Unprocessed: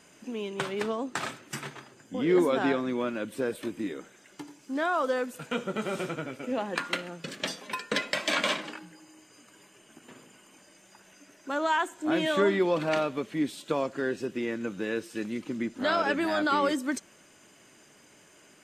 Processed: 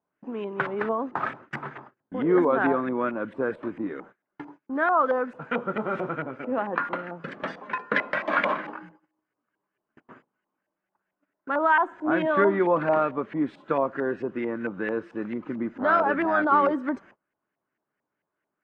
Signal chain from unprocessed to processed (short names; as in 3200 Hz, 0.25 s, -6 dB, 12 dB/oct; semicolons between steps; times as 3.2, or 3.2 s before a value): gate -49 dBFS, range -28 dB; LFO low-pass saw up 4.5 Hz 830–1900 Hz; gain +1.5 dB